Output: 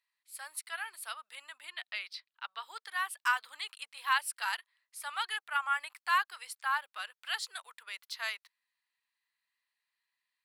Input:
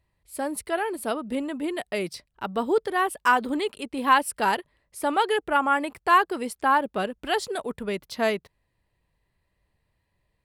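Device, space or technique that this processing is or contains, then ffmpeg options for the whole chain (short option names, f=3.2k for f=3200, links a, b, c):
headphones lying on a table: -filter_complex "[0:a]asettb=1/sr,asplit=3[a][b][c];[a]atrim=end=1.704[d];[b]atrim=start=1.7:end=2.63,asetpts=PTS-STARTPTS,afade=t=in:d=0.004:c=qsin,afade=t=out:st=0.926:d=0.004:c=qsin,highshelf=f=5.5k:t=q:w=1.5:g=-11.5[e];[c]atrim=start=2.626[f];[d][e]acrossfade=d=0.004:c1=hsin:c2=qsin[g];[g][f]acrossfade=d=0.004:c1=qsin:c2=hsin,highpass=f=1.2k:w=0.5412,highpass=f=1.2k:w=1.3066,equalizer=f=4.2k:t=o:w=0.45:g=4,volume=-5.5dB"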